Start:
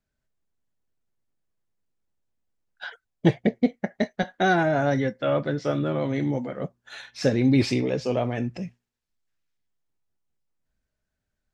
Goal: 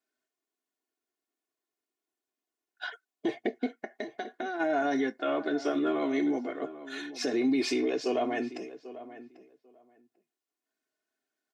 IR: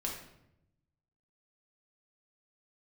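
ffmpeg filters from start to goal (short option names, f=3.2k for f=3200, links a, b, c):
-filter_complex "[0:a]highpass=f=240:w=0.5412,highpass=f=240:w=1.3066,aecho=1:1:2.8:0.89,alimiter=limit=-17dB:level=0:latency=1:release=59,asplit=3[a][b][c];[a]afade=t=out:st=3.72:d=0.02[d];[b]acompressor=threshold=-30dB:ratio=6,afade=t=in:st=3.72:d=0.02,afade=t=out:st=4.59:d=0.02[e];[c]afade=t=in:st=4.59:d=0.02[f];[d][e][f]amix=inputs=3:normalize=0,asplit=2[g][h];[h]adelay=793,lowpass=f=1.8k:p=1,volume=-14.5dB,asplit=2[i][j];[j]adelay=793,lowpass=f=1.8k:p=1,volume=0.16[k];[i][k]amix=inputs=2:normalize=0[l];[g][l]amix=inputs=2:normalize=0,volume=-3dB"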